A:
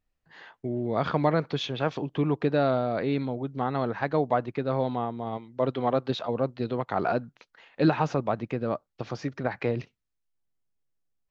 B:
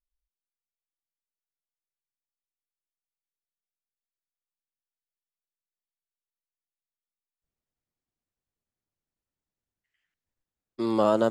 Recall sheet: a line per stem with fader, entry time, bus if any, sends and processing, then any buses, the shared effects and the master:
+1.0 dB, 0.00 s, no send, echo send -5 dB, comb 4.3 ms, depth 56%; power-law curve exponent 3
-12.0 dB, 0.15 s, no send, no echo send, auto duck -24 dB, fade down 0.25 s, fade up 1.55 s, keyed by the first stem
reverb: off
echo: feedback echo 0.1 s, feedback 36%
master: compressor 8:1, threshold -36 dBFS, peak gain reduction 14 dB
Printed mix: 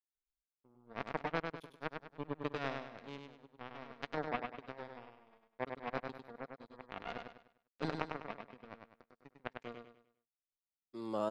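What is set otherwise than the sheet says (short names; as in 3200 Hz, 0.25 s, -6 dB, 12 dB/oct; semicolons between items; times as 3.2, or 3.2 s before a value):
stem A +1.0 dB -> -6.0 dB; master: missing compressor 8:1, threshold -36 dBFS, peak gain reduction 14 dB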